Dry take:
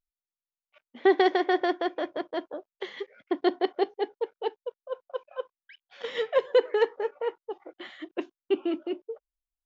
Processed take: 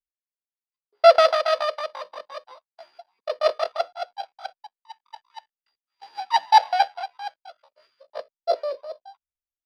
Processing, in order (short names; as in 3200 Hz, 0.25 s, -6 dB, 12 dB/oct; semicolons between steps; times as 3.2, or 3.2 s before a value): sample sorter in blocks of 16 samples; pitch shift +9.5 st; air absorption 220 m; three-band expander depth 100%; gain +2 dB